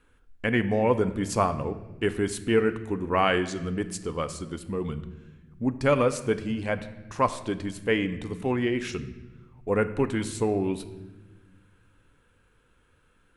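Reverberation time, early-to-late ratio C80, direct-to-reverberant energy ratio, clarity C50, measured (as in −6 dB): 1.2 s, 15.0 dB, 10.0 dB, 13.5 dB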